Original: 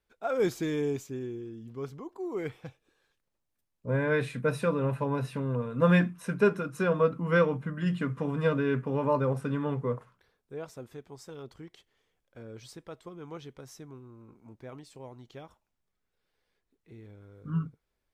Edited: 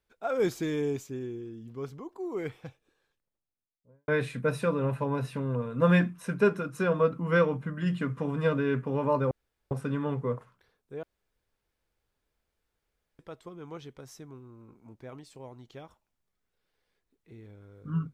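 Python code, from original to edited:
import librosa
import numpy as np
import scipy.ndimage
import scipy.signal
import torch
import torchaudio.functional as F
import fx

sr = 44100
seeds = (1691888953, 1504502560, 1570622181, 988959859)

y = fx.studio_fade_out(x, sr, start_s=2.62, length_s=1.46)
y = fx.edit(y, sr, fx.insert_room_tone(at_s=9.31, length_s=0.4),
    fx.room_tone_fill(start_s=10.63, length_s=2.16), tone=tone)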